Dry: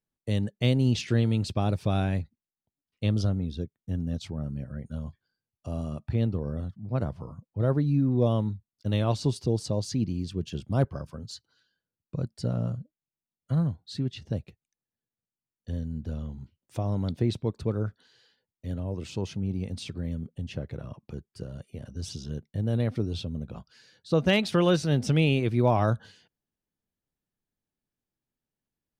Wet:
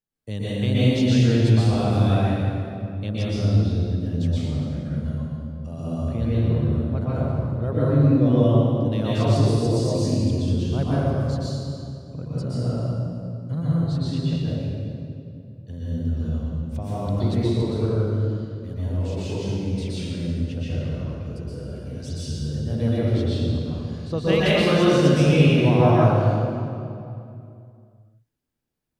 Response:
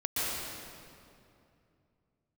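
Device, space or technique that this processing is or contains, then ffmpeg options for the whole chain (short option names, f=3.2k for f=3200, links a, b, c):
stairwell: -filter_complex "[1:a]atrim=start_sample=2205[a];[0:a][a]afir=irnorm=-1:irlink=0,volume=-2.5dB"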